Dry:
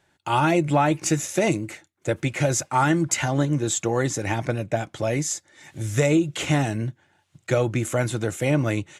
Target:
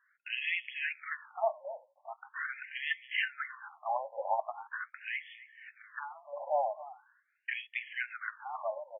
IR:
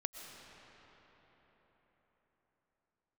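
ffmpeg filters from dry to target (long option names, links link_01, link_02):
-filter_complex "[0:a]asplit=2[link_01][link_02];[link_02]adelay=270,highpass=300,lowpass=3400,asoftclip=type=hard:threshold=-16dB,volume=-15dB[link_03];[link_01][link_03]amix=inputs=2:normalize=0,adynamicsmooth=sensitivity=3:basefreq=3300,afftfilt=real='re*between(b*sr/1024,720*pow(2500/720,0.5+0.5*sin(2*PI*0.42*pts/sr))/1.41,720*pow(2500/720,0.5+0.5*sin(2*PI*0.42*pts/sr))*1.41)':imag='im*between(b*sr/1024,720*pow(2500/720,0.5+0.5*sin(2*PI*0.42*pts/sr))/1.41,720*pow(2500/720,0.5+0.5*sin(2*PI*0.42*pts/sr))*1.41)':win_size=1024:overlap=0.75"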